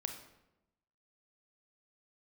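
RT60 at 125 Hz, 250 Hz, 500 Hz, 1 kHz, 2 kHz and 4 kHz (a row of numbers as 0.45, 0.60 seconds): 1.1, 1.1, 1.0, 0.85, 0.75, 0.65 seconds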